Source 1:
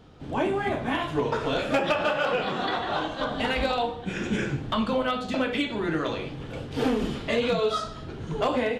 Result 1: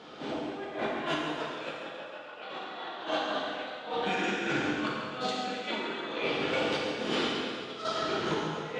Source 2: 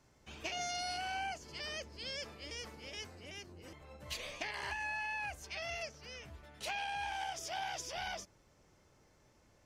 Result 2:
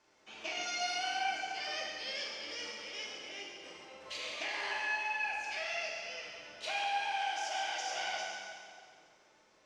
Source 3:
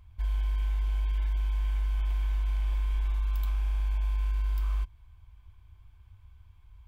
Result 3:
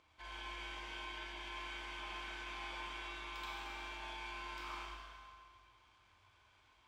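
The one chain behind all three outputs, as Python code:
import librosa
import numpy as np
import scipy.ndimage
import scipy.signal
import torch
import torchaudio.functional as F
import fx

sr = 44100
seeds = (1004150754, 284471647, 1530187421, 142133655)

p1 = scipy.signal.sosfilt(scipy.signal.butter(2, 360.0, 'highpass', fs=sr, output='sos'), x)
p2 = fx.high_shelf(p1, sr, hz=2600.0, db=6.5)
p3 = fx.over_compress(p2, sr, threshold_db=-36.0, ratio=-0.5)
p4 = fx.dmg_crackle(p3, sr, seeds[0], per_s=270.0, level_db=-59.0)
p5 = fx.air_absorb(p4, sr, metres=110.0)
p6 = p5 + fx.echo_feedback(p5, sr, ms=137, feedback_pct=59, wet_db=-10.5, dry=0)
p7 = fx.rev_plate(p6, sr, seeds[1], rt60_s=1.8, hf_ratio=0.9, predelay_ms=0, drr_db=-3.0)
y = p7 * librosa.db_to_amplitude(-1.5)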